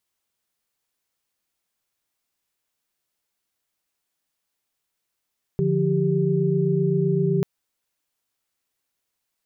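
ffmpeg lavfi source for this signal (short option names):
-f lavfi -i "aevalsrc='0.075*(sin(2*PI*146.83*t)+sin(2*PI*174.61*t)+sin(2*PI*392*t))':d=1.84:s=44100"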